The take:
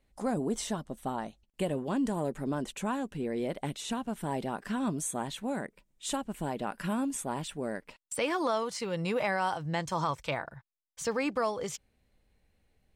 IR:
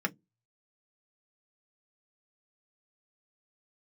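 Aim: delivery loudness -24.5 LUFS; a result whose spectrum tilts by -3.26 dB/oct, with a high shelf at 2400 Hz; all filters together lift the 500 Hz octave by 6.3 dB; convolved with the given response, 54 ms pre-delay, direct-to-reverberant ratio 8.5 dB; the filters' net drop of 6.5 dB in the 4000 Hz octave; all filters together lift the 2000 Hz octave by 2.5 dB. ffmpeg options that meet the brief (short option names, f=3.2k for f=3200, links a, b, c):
-filter_complex "[0:a]equalizer=f=500:t=o:g=7.5,equalizer=f=2k:t=o:g=7,highshelf=f=2.4k:g=-6,equalizer=f=4k:t=o:g=-6.5,asplit=2[a][b];[1:a]atrim=start_sample=2205,adelay=54[c];[b][c]afir=irnorm=-1:irlink=0,volume=-15dB[d];[a][d]amix=inputs=2:normalize=0,volume=5dB"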